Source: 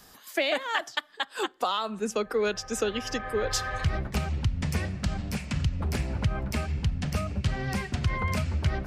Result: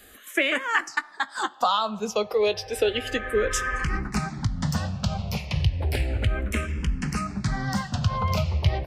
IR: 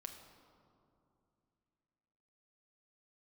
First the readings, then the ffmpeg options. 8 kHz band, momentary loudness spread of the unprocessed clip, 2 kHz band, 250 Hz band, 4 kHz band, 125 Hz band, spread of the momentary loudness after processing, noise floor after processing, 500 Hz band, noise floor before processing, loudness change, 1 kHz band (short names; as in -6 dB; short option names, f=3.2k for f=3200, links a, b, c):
+2.0 dB, 4 LU, +5.0 dB, +2.5 dB, +2.5 dB, +2.5 dB, 6 LU, -49 dBFS, +3.5 dB, -54 dBFS, +3.5 dB, +5.0 dB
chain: -filter_complex "[0:a]asplit=2[a][b];[b]adelay=19,volume=-14dB[c];[a][c]amix=inputs=2:normalize=0,asplit=2[d][e];[e]highpass=460,lowpass=7.1k[f];[1:a]atrim=start_sample=2205[g];[f][g]afir=irnorm=-1:irlink=0,volume=-9.5dB[h];[d][h]amix=inputs=2:normalize=0,asplit=2[i][j];[j]afreqshift=-0.32[k];[i][k]amix=inputs=2:normalize=1,volume=5.5dB"